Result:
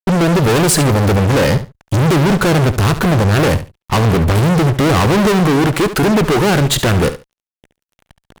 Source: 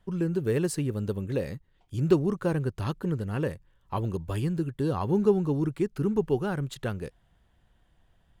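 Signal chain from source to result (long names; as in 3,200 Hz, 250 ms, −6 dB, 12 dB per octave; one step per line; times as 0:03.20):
0:05.40–0:06.70: parametric band 76 Hz −13 dB 2.6 octaves
fuzz pedal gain 47 dB, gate −55 dBFS
repeating echo 70 ms, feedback 17%, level −12.5 dB
level +2 dB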